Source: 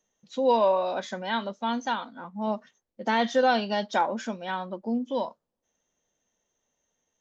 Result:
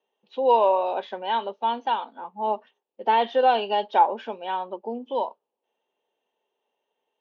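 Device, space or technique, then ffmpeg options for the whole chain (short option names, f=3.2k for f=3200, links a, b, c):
phone earpiece: -af "highpass=380,equalizer=f=410:t=q:w=4:g=10,equalizer=f=860:t=q:w=4:g=9,equalizer=f=1.4k:t=q:w=4:g=-5,equalizer=f=2k:t=q:w=4:g=-6,equalizer=f=2.8k:t=q:w=4:g=7,lowpass=f=3.4k:w=0.5412,lowpass=f=3.4k:w=1.3066"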